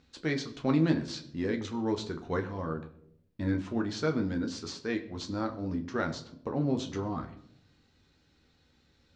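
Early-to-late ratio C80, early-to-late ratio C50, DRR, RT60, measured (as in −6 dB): 15.5 dB, 14.0 dB, 4.5 dB, 0.70 s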